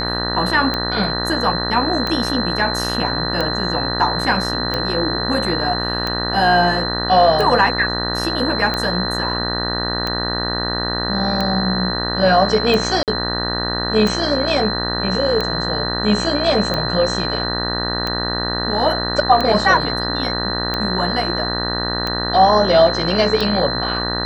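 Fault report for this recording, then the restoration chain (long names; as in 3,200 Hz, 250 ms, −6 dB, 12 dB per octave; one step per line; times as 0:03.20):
mains buzz 60 Hz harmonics 32 −24 dBFS
scratch tick 45 rpm −8 dBFS
whistle 4,100 Hz −23 dBFS
0:13.03–0:13.08: drop-out 48 ms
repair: click removal
hum removal 60 Hz, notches 32
notch filter 4,100 Hz, Q 30
repair the gap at 0:13.03, 48 ms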